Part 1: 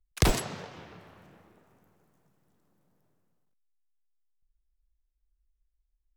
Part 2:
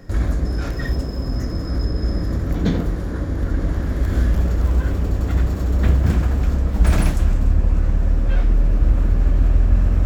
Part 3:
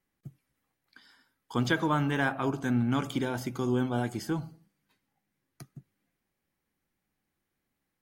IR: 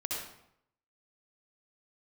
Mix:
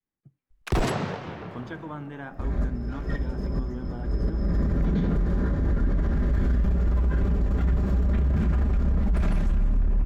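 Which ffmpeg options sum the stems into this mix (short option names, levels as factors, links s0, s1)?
-filter_complex "[0:a]aeval=exprs='0.631*sin(PI/2*4.47*val(0)/0.631)':c=same,adelay=500,volume=0.631[s0];[1:a]aecho=1:1:5:0.47,adelay=2300,volume=1.33[s1];[2:a]volume=0.355,asplit=2[s2][s3];[s3]apad=whole_len=545133[s4];[s1][s4]sidechaincompress=threshold=0.00447:ratio=5:attack=12:release=154[s5];[s0][s5][s2]amix=inputs=3:normalize=0,lowpass=f=1400:p=1,adynamicequalizer=threshold=0.0158:dfrequency=540:dqfactor=0.75:tfrequency=540:tqfactor=0.75:attack=5:release=100:ratio=0.375:range=2:mode=cutabove:tftype=bell,alimiter=limit=0.141:level=0:latency=1:release=22"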